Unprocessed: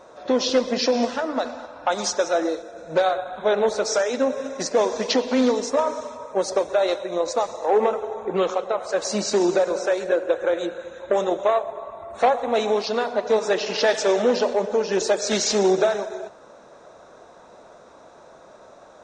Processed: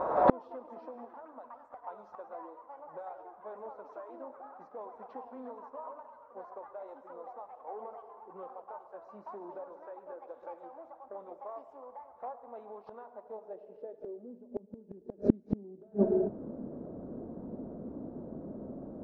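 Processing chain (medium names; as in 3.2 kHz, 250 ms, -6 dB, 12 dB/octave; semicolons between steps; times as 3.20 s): ever faster or slower copies 104 ms, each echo +5 st, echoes 3, each echo -6 dB; low-pass sweep 1 kHz -> 250 Hz, 13.18–14.46 s; inverted gate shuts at -20 dBFS, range -39 dB; trim +11 dB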